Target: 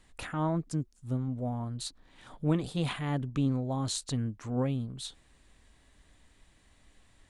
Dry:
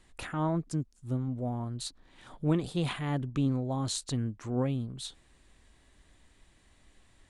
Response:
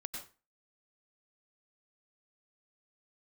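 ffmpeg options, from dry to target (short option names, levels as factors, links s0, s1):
-af "bandreject=f=360:w=12"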